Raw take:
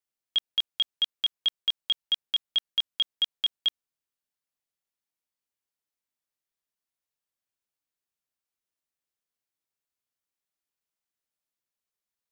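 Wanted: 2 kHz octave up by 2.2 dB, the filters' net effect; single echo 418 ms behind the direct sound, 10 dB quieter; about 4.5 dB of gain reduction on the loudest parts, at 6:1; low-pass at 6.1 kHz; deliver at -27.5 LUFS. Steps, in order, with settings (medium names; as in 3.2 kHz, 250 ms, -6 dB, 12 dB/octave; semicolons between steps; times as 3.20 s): low-pass 6.1 kHz; peaking EQ 2 kHz +3 dB; compression 6:1, threshold -25 dBFS; delay 418 ms -10 dB; trim +2.5 dB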